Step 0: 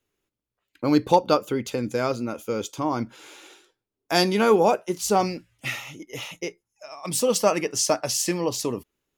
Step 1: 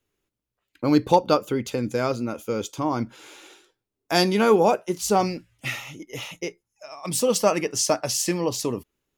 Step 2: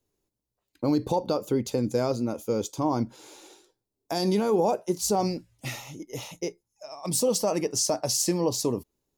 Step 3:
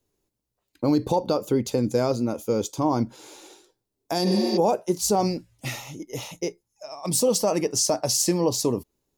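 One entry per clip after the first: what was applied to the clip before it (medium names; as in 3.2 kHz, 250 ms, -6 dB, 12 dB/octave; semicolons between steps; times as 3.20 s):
bass shelf 170 Hz +3.5 dB
peak limiter -14.5 dBFS, peak gain reduction 10.5 dB; high-order bell 2 kHz -9 dB
spectral replace 4.29–4.55 s, 260–7100 Hz before; trim +3 dB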